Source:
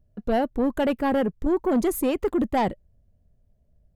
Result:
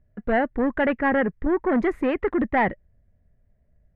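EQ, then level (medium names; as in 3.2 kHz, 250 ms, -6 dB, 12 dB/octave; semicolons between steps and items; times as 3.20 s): resonant low-pass 1.9 kHz, resonance Q 4.1; 0.0 dB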